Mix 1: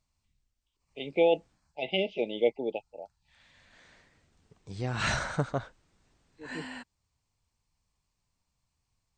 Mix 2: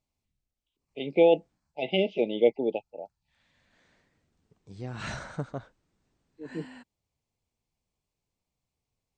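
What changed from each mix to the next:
second voice −9.0 dB
master: add parametric band 240 Hz +6 dB 2.7 octaves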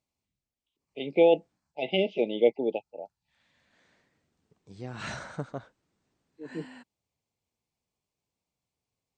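master: add high-pass filter 130 Hz 6 dB per octave

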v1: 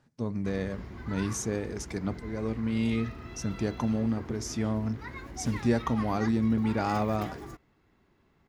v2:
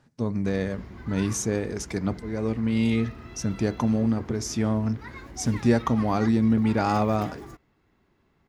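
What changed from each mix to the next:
speech +5.0 dB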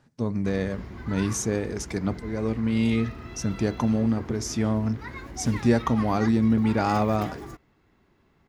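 background +3.0 dB

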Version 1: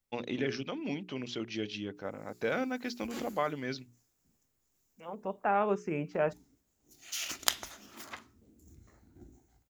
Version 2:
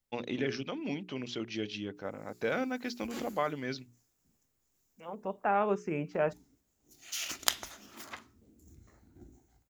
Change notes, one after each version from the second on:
nothing changed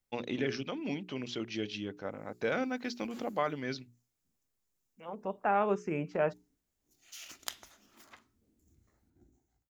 background −11.0 dB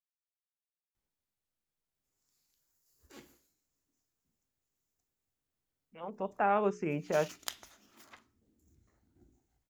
first voice: muted
second voice: entry +0.95 s

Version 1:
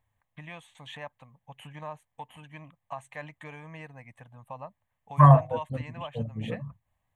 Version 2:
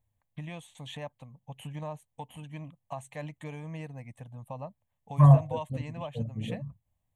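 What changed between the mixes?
first voice +7.0 dB
master: add parametric band 1,500 Hz −14 dB 2 octaves

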